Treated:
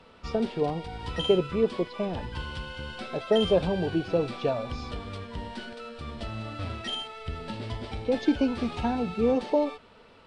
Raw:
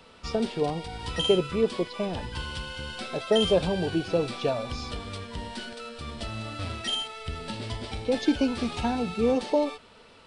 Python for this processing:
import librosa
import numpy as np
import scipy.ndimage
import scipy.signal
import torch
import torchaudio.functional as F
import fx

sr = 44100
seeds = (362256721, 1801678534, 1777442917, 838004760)

y = fx.lowpass(x, sr, hz=2400.0, slope=6)